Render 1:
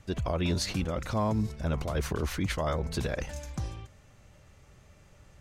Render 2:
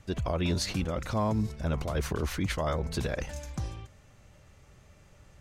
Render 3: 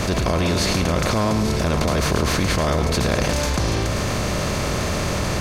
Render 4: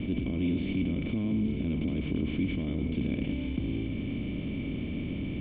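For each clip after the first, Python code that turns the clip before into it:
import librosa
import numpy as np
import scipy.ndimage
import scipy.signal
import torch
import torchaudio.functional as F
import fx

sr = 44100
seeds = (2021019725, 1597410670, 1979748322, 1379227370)

y1 = x
y2 = fx.bin_compress(y1, sr, power=0.4)
y2 = y2 + 10.0 ** (-8.5 / 20.0) * np.pad(y2, (int(107 * sr / 1000.0), 0))[:len(y2)]
y2 = fx.env_flatten(y2, sr, amount_pct=70)
y2 = F.gain(torch.from_numpy(y2), 3.0).numpy()
y3 = fx.formant_cascade(y2, sr, vowel='i')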